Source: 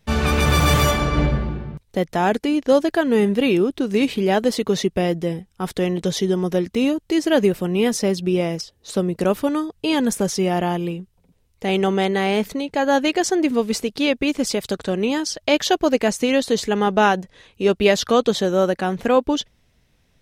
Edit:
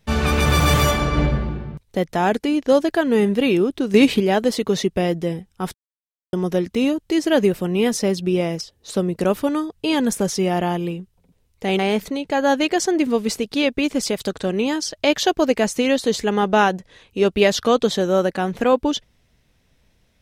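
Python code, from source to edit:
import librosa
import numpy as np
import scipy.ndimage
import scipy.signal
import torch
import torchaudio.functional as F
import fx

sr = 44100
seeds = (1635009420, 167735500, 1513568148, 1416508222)

y = fx.edit(x, sr, fx.clip_gain(start_s=3.94, length_s=0.26, db=5.5),
    fx.silence(start_s=5.74, length_s=0.59),
    fx.cut(start_s=11.79, length_s=0.44), tone=tone)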